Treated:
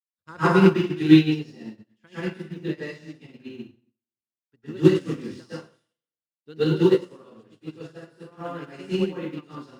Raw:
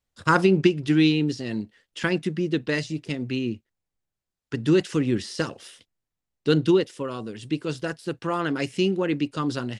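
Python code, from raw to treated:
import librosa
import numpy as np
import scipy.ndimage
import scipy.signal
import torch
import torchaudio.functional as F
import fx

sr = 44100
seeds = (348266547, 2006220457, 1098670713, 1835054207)

y = fx.law_mismatch(x, sr, coded='mu')
y = scipy.signal.sosfilt(scipy.signal.butter(2, 51.0, 'highpass', fs=sr, output='sos'), y)
y = fx.high_shelf(y, sr, hz=4800.0, db=-5.0)
y = fx.rev_plate(y, sr, seeds[0], rt60_s=1.0, hf_ratio=0.9, predelay_ms=95, drr_db=-10.0)
y = fx.upward_expand(y, sr, threshold_db=-37.0, expansion=2.5)
y = y * 10.0 ** (-4.0 / 20.0)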